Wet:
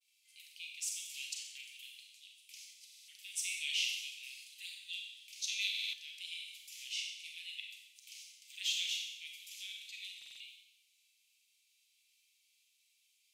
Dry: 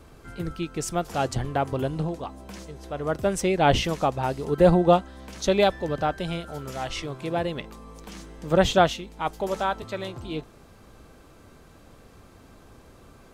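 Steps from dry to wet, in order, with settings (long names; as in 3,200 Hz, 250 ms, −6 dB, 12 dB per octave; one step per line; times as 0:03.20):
Butterworth high-pass 2,300 Hz 72 dB per octave
downward expander −58 dBFS
four-comb reverb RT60 0.91 s, combs from 30 ms, DRR 0.5 dB
buffer that repeats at 0:02.85/0:05.70/0:10.17, samples 2,048, times 4
level −6 dB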